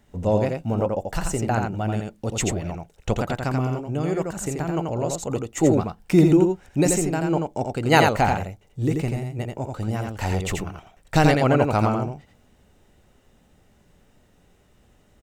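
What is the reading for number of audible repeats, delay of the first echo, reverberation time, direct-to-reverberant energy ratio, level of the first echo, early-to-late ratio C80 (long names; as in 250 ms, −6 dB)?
1, 85 ms, no reverb audible, no reverb audible, −4.0 dB, no reverb audible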